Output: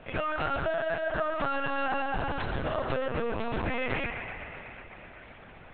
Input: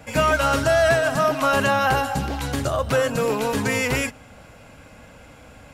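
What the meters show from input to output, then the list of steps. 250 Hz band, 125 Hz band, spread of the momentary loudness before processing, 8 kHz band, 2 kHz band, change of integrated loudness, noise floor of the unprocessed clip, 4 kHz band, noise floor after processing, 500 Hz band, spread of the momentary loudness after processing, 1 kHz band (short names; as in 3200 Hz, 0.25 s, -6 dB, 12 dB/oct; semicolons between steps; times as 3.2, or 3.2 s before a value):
-10.0 dB, -11.0 dB, 7 LU, under -40 dB, -9.5 dB, -10.5 dB, -47 dBFS, -12.5 dB, -50 dBFS, -10.5 dB, 17 LU, -9.5 dB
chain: compressor 20:1, threshold -22 dBFS, peak gain reduction 9 dB; band-limited delay 0.125 s, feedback 78%, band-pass 1200 Hz, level -4 dB; LPC vocoder at 8 kHz pitch kept; gain -5 dB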